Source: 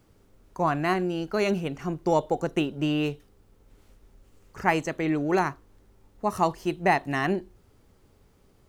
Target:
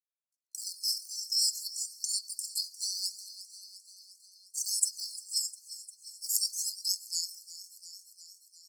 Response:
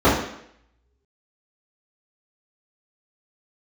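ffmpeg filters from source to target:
-filter_complex "[0:a]lowpass=8.5k,equalizer=f=1.5k:t=o:w=0.26:g=-8.5,agate=range=-55dB:threshold=-50dB:ratio=16:detection=peak,acrossover=split=2200[a][b];[a]acontrast=48[c];[c][b]amix=inputs=2:normalize=0,asetrate=55563,aresample=44100,atempo=0.793701,aphaser=in_gain=1:out_gain=1:delay=3.2:decay=0.55:speed=0.28:type=sinusoidal,bass=f=250:g=-6,treble=f=4k:g=12,asplit=7[d][e][f][g][h][i][j];[e]adelay=352,afreqshift=56,volume=-18dB[k];[f]adelay=704,afreqshift=112,volume=-22.2dB[l];[g]adelay=1056,afreqshift=168,volume=-26.3dB[m];[h]adelay=1408,afreqshift=224,volume=-30.5dB[n];[i]adelay=1760,afreqshift=280,volume=-34.6dB[o];[j]adelay=2112,afreqshift=336,volume=-38.8dB[p];[d][k][l][m][n][o][p]amix=inputs=7:normalize=0,asplit=2[q][r];[r]acompressor=threshold=-31dB:ratio=6,volume=2dB[s];[q][s]amix=inputs=2:normalize=0,afftfilt=real='re*(1-between(b*sr/4096,120,4200))':imag='im*(1-between(b*sr/4096,120,4200))':win_size=4096:overlap=0.75,afftfilt=real='re*gte(b*sr/1024,220*pow(1600/220,0.5+0.5*sin(2*PI*4*pts/sr)))':imag='im*gte(b*sr/1024,220*pow(1600/220,0.5+0.5*sin(2*PI*4*pts/sr)))':win_size=1024:overlap=0.75,volume=4dB"

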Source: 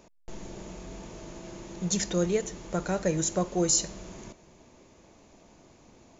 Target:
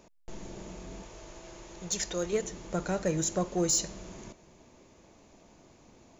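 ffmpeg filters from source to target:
-filter_complex "[0:a]asettb=1/sr,asplit=3[a][b][c];[a]atrim=end=1.034[d];[b]atrim=start=1.03:end=2.33,asetpts=PTS-STARTPTS,afade=t=in:d=0.004:c=qsin,afade=t=out:st=1.296:d=0.004:c=qsin,equalizer=f=200:w=1:g=-11.5[e];[c]atrim=start=2.326[f];[d][e]acrossfade=d=0.004:c1=hsin:c2=qsin[g];[g][f]acrossfade=d=0.004:c1=qsin:c2=hsin,asplit=2[h][i];[i]volume=23dB,asoftclip=hard,volume=-23dB,volume=-3.5dB[j];[h][j]amix=inputs=2:normalize=0,volume=-6dB"

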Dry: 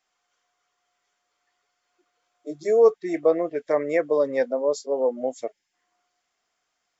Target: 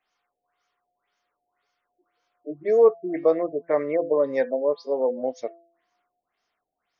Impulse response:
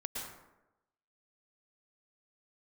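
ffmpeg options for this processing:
-af "bandreject=f=169.2:t=h:w=4,bandreject=f=338.4:t=h:w=4,bandreject=f=507.6:t=h:w=4,bandreject=f=676.8:t=h:w=4,bandreject=f=846:t=h:w=4,bandreject=f=1.0152k:t=h:w=4,bandreject=f=1.1844k:t=h:w=4,bandreject=f=1.3536k:t=h:w=4,bandreject=f=1.5228k:t=h:w=4,bandreject=f=1.692k:t=h:w=4,bandreject=f=1.8612k:t=h:w=4,bandreject=f=2.0304k:t=h:w=4,bandreject=f=2.1996k:t=h:w=4,bandreject=f=2.3688k:t=h:w=4,bandreject=f=2.538k:t=h:w=4,bandreject=f=2.7072k:t=h:w=4,bandreject=f=2.8764k:t=h:w=4,bandreject=f=3.0456k:t=h:w=4,bandreject=f=3.2148k:t=h:w=4,bandreject=f=3.384k:t=h:w=4,bandreject=f=3.5532k:t=h:w=4,bandreject=f=3.7224k:t=h:w=4,bandreject=f=3.8916k:t=h:w=4,bandreject=f=4.0608k:t=h:w=4,bandreject=f=4.23k:t=h:w=4,bandreject=f=4.3992k:t=h:w=4,bandreject=f=4.5684k:t=h:w=4,bandreject=f=4.7376k:t=h:w=4,bandreject=f=4.9068k:t=h:w=4,bandreject=f=5.076k:t=h:w=4,afftfilt=real='re*lt(b*sr/1024,800*pow(6900/800,0.5+0.5*sin(2*PI*1.9*pts/sr)))':imag='im*lt(b*sr/1024,800*pow(6900/800,0.5+0.5*sin(2*PI*1.9*pts/sr)))':win_size=1024:overlap=0.75"

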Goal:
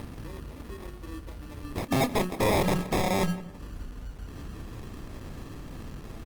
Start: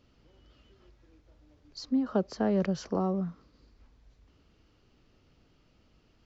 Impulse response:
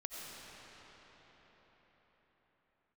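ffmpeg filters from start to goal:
-filter_complex "[0:a]equalizer=f=1.3k:t=o:w=2.1:g=-11,bandreject=f=60:t=h:w=6,bandreject=f=120:t=h:w=6,bandreject=f=180:t=h:w=6,bandreject=f=240:t=h:w=6,bandreject=f=300:t=h:w=6,bandreject=f=360:t=h:w=6,acompressor=mode=upward:threshold=-36dB:ratio=2.5,acrusher=samples=30:mix=1:aa=0.000001,aeval=exprs='0.126*(cos(1*acos(clip(val(0)/0.126,-1,1)))-cos(1*PI/2))+0.00126*(cos(2*acos(clip(val(0)/0.126,-1,1)))-cos(2*PI/2))+0.00178*(cos(4*acos(clip(val(0)/0.126,-1,1)))-cos(4*PI/2))+0.0178*(cos(5*acos(clip(val(0)/0.126,-1,1)))-cos(5*PI/2))+0.00447*(cos(6*acos(clip(val(0)/0.126,-1,1)))-cos(6*PI/2))':c=same,aeval=exprs='(mod(18.8*val(0)+1,2)-1)/18.8':c=same,asplit=2[a][b];[b]adelay=28,volume=-12dB[c];[a][c]amix=inputs=2:normalize=0,asplit=2[d][e];[e]adelay=169,lowpass=f=2.2k:p=1,volume=-16.5dB,asplit=2[f][g];[g]adelay=169,lowpass=f=2.2k:p=1,volume=0.32,asplit=2[h][i];[i]adelay=169,lowpass=f=2.2k:p=1,volume=0.32[j];[d][f][h][j]amix=inputs=4:normalize=0,volume=6dB" -ar 48000 -c:a libopus -b:a 24k

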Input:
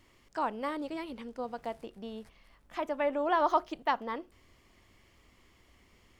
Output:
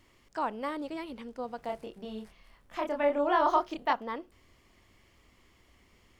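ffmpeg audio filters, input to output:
-filter_complex "[0:a]asettb=1/sr,asplit=3[a][b][c];[a]atrim=end=1.664[d];[b]atrim=start=1.66:end=3.93,asetpts=PTS-STARTPTS,afade=t=in:d=0.004:c=qsin,afade=t=out:st=2.266:d=0.004:c=qsin,asplit=2[e][f];[f]adelay=28,volume=-3dB[g];[e][g]amix=inputs=2:normalize=0,atrim=end_sample=100107[h];[c]atrim=start=3.926[i];[d][h]acrossfade=d=0.004:c1=hsin:c2=qsin[j];[j][i]acrossfade=d=0.004:c1=qsin:c2=hsin"

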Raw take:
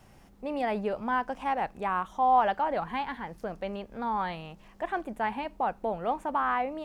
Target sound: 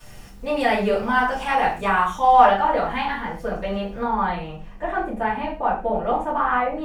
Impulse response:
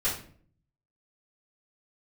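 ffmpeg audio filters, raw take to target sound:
-filter_complex "[0:a]asetnsamples=n=441:p=0,asendcmd='2.45 highshelf g 3.5;4.03 highshelf g -5.5',highshelf=f=2.2k:g=11[a];[1:a]atrim=start_sample=2205,afade=t=out:st=0.2:d=0.01,atrim=end_sample=9261[b];[a][b]afir=irnorm=-1:irlink=0"

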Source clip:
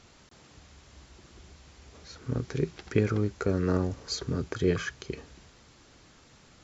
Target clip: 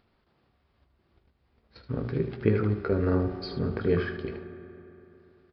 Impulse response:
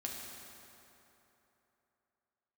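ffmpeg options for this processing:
-filter_complex "[0:a]agate=range=-52dB:threshold=-44dB:ratio=16:detection=peak,highshelf=f=3.8k:g=-8,bandreject=f=60:t=h:w=6,bandreject=f=120:t=h:w=6,bandreject=f=180:t=h:w=6,bandreject=f=240:t=h:w=6,bandreject=f=300:t=h:w=6,bandreject=f=360:t=h:w=6,bandreject=f=420:t=h:w=6,acompressor=mode=upward:threshold=-41dB:ratio=2.5,atempo=1.2,aecho=1:1:18|77:0.335|0.355,asplit=2[a][b];[1:a]atrim=start_sample=2205,lowpass=2.5k[c];[b][c]afir=irnorm=-1:irlink=0,volume=-5.5dB[d];[a][d]amix=inputs=2:normalize=0,aresample=11025,aresample=44100,volume=-1.5dB"

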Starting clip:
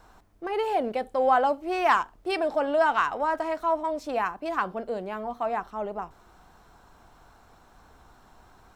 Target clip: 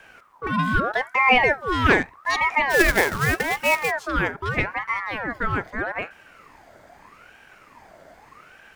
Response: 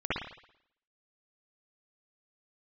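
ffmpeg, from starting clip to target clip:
-filter_complex "[0:a]lowshelf=f=400:g=3,asplit=3[a][b][c];[a]afade=t=out:st=2.69:d=0.02[d];[b]acrusher=bits=2:mode=log:mix=0:aa=0.000001,afade=t=in:st=2.69:d=0.02,afade=t=out:st=3.9:d=0.02[e];[c]afade=t=in:st=3.9:d=0.02[f];[d][e][f]amix=inputs=3:normalize=0,aeval=exprs='val(0)*sin(2*PI*1100*n/s+1100*0.45/0.81*sin(2*PI*0.81*n/s))':c=same,volume=6.5dB"

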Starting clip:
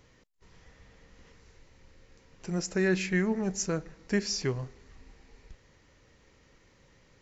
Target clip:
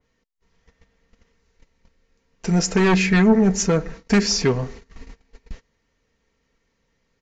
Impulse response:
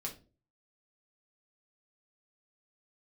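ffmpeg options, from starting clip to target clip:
-af "agate=range=-23dB:threshold=-50dB:ratio=16:detection=peak,aresample=16000,aeval=exprs='0.178*sin(PI/2*2.24*val(0)/0.178)':c=same,aresample=44100,aecho=1:1:4.4:0.42,adynamicequalizer=threshold=0.0112:dfrequency=2900:dqfactor=0.7:tfrequency=2900:tqfactor=0.7:attack=5:release=100:ratio=0.375:range=3.5:mode=cutabove:tftype=highshelf,volume=3dB"

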